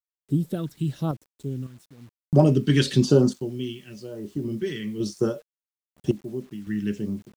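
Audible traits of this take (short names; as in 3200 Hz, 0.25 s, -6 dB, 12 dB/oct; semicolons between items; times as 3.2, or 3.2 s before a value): phasing stages 2, 1 Hz, lowest notch 660–2500 Hz; random-step tremolo 1.8 Hz, depth 90%; a quantiser's noise floor 10-bit, dither none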